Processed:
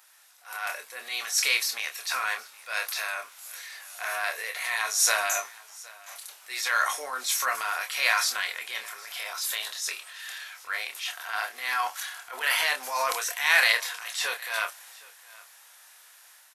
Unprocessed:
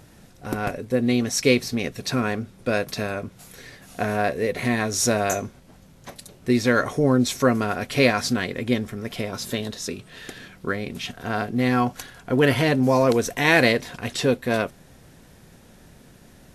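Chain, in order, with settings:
high-pass filter 950 Hz 24 dB per octave
high-shelf EQ 10,000 Hz +10.5 dB
transient designer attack −8 dB, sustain +5 dB
automatic gain control gain up to 5 dB
double-tracking delay 27 ms −6.5 dB
on a send: single-tap delay 766 ms −22.5 dB
on the sum: level −4 dB

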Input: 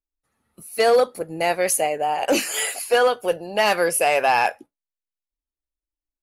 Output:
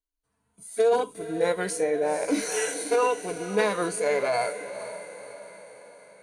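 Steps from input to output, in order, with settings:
EQ curve with evenly spaced ripples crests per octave 1.7, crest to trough 10 dB
downward compressor 3 to 1, threshold −19 dBFS, peak gain reduction 7 dB
on a send: feedback delay with all-pass diffusion 491 ms, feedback 53%, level −12.5 dB
on the sum: formants moved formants −3 semitones
harmonic and percussive parts rebalanced percussive −12 dB

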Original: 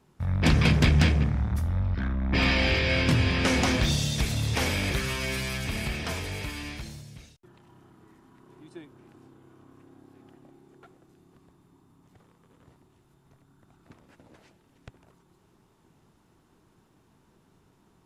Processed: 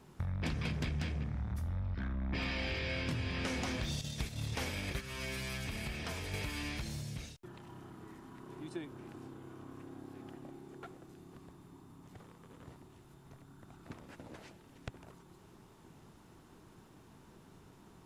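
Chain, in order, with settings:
0:04.01–0:06.34: noise gate −26 dBFS, range −10 dB
downward compressor 5 to 1, threshold −41 dBFS, peak gain reduction 22 dB
level +4.5 dB

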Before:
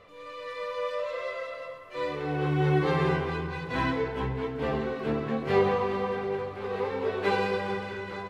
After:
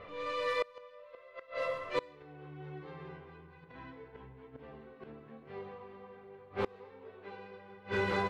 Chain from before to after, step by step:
gate with flip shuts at −25 dBFS, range −27 dB
low-pass that shuts in the quiet parts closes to 2,600 Hz, open at −35 dBFS
level +5 dB

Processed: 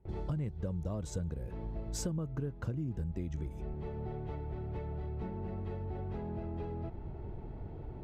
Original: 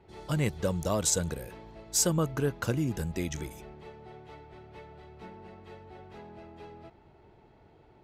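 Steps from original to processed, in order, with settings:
noise gate with hold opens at −52 dBFS
spectral tilt −4 dB per octave
downward compressor 6 to 1, threshold −40 dBFS, peak gain reduction 23.5 dB
level +4.5 dB

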